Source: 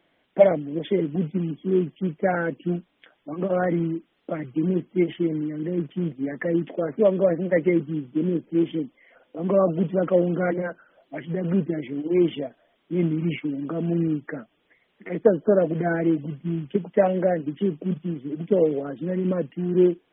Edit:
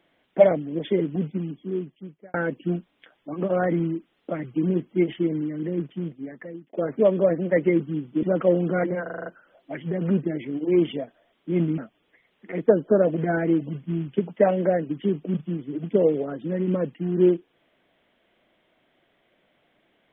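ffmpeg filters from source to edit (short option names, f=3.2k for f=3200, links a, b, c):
-filter_complex "[0:a]asplit=11[a][b][c][d][e][f][g][h][i][j][k];[a]atrim=end=2.34,asetpts=PTS-STARTPTS,afade=t=out:st=1.02:d=1.32[l];[b]atrim=start=2.34:end=6.73,asetpts=PTS-STARTPTS,afade=t=in:d=0.004:c=hsin,afade=t=out:st=3.28:d=1.11[m];[c]atrim=start=6.73:end=8.232,asetpts=PTS-STARTPTS,afade=t=in:d=0.004:c=hsin[n];[d]atrim=start=9.898:end=10.732[o];[e]atrim=start=10.688:end=10.732[p];[f]atrim=start=10.688:end=10.732[q];[g]atrim=start=10.688:end=10.732[r];[h]atrim=start=10.688:end=10.732[s];[i]atrim=start=10.688:end=10.732[t];[j]atrim=start=10.688:end=13.212[u];[k]atrim=start=14.348[v];[l][m][n]concat=n=3:v=0:a=1[w];[w][o]acrossfade=d=0.004:c1=hsin:c2=hsin[x];[x][p]acrossfade=d=0.004:c1=hsin:c2=hsin[y];[y][q]acrossfade=d=0.004:c1=hsin:c2=hsin[z];[z][r]acrossfade=d=0.004:c1=hsin:c2=hsin[aa];[aa][s]acrossfade=d=0.004:c1=hsin:c2=hsin[ab];[ab][t]acrossfade=d=0.004:c1=hsin:c2=hsin[ac];[ac][u]acrossfade=d=0.004:c1=hsin:c2=hsin[ad];[ad][v]acrossfade=d=0.004:c1=hsin:c2=hsin"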